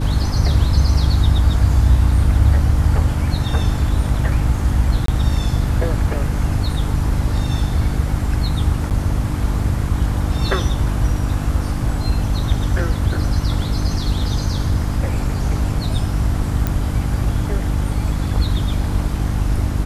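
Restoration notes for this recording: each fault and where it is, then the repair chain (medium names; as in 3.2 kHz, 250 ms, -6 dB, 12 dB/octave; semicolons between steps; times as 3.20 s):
hum 50 Hz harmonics 6 -22 dBFS
5.06–5.08 s: dropout 23 ms
8.90–8.91 s: dropout 8.6 ms
16.67 s: pop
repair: de-click; de-hum 50 Hz, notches 6; interpolate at 5.06 s, 23 ms; interpolate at 8.90 s, 8.6 ms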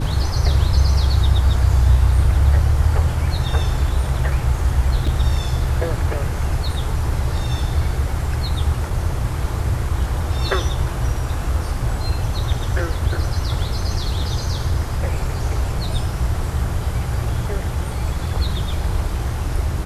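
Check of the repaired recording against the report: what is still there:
nothing left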